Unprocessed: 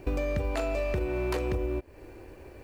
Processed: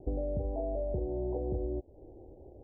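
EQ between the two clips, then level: steep low-pass 820 Hz 72 dB/oct; -4.0 dB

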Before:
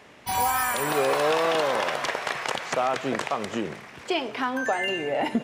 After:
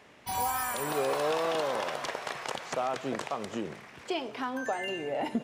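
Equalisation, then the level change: dynamic EQ 2000 Hz, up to -4 dB, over -40 dBFS, Q 1; -5.5 dB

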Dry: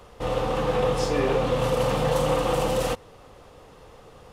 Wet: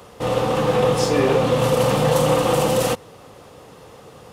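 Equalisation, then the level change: HPF 120 Hz 12 dB/oct; low shelf 240 Hz +5.5 dB; high shelf 6100 Hz +6.5 dB; +4.5 dB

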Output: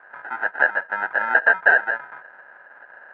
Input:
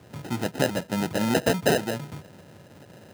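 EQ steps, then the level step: resonant high-pass 820 Hz, resonance Q 1.8; synth low-pass 1600 Hz, resonance Q 12; air absorption 200 m; -1.0 dB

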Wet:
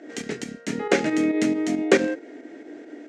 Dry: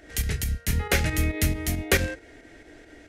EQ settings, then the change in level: elliptic band-pass 260–7400 Hz, stop band 50 dB; tilt shelf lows +8.5 dB, about 750 Hz; +5.5 dB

